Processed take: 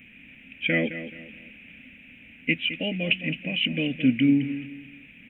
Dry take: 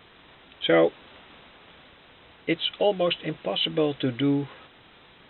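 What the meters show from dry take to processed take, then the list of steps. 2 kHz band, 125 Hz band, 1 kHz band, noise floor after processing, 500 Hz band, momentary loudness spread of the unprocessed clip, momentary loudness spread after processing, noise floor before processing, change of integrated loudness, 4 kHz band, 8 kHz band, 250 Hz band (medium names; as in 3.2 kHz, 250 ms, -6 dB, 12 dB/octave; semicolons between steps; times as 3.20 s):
+6.5 dB, +2.0 dB, -16.5 dB, -51 dBFS, -10.5 dB, 9 LU, 21 LU, -54 dBFS, 0.0 dB, -1.0 dB, no reading, +3.5 dB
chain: FFT filter 140 Hz 0 dB, 250 Hz +12 dB, 380 Hz -14 dB, 540 Hz -9 dB, 1.1 kHz -24 dB, 2.5 kHz +14 dB, 4.1 kHz -26 dB, 6.5 kHz +10 dB; on a send: feedback delay 214 ms, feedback 32%, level -12 dB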